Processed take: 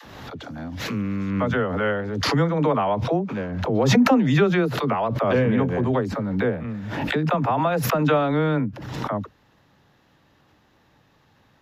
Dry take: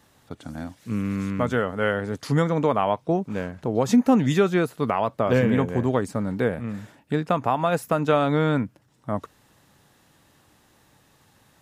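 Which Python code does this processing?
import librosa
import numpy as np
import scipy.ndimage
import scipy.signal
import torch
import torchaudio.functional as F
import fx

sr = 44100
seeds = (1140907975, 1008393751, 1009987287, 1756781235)

y = scipy.signal.lfilter(np.full(5, 1.0 / 5), 1.0, x)
y = fx.dispersion(y, sr, late='lows', ms=55.0, hz=330.0)
y = fx.pre_swell(y, sr, db_per_s=36.0)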